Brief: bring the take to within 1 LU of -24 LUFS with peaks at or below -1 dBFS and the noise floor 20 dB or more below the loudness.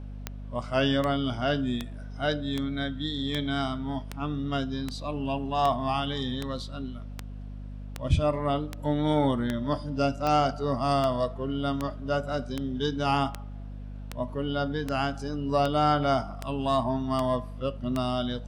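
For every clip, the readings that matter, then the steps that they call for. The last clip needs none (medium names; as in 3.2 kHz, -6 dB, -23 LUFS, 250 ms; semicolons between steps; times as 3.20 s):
clicks found 24; hum 50 Hz; highest harmonic 250 Hz; hum level -36 dBFS; loudness -28.5 LUFS; peak level -11.0 dBFS; loudness target -24.0 LUFS
-> de-click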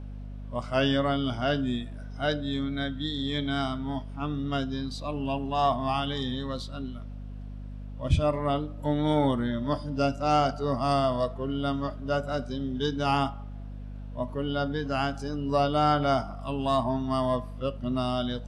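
clicks found 0; hum 50 Hz; highest harmonic 250 Hz; hum level -36 dBFS
-> hum notches 50/100/150/200/250 Hz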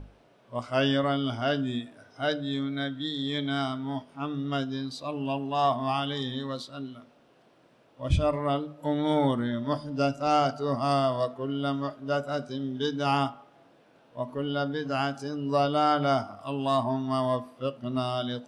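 hum not found; loudness -29.0 LUFS; peak level -12.0 dBFS; loudness target -24.0 LUFS
-> trim +5 dB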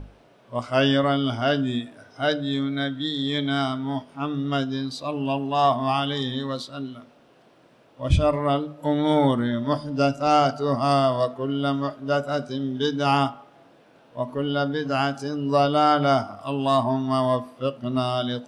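loudness -24.0 LUFS; peak level -7.0 dBFS; noise floor -55 dBFS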